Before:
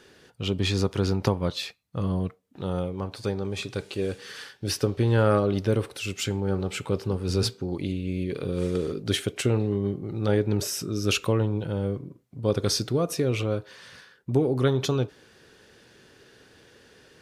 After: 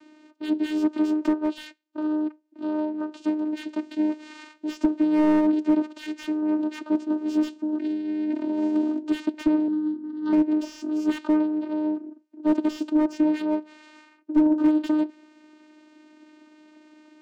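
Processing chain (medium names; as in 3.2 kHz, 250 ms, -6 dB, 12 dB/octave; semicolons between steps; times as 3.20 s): vocoder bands 8, saw 306 Hz; 9.68–10.33 s: static phaser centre 2.4 kHz, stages 6; slew-rate limiter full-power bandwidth 43 Hz; trim +3.5 dB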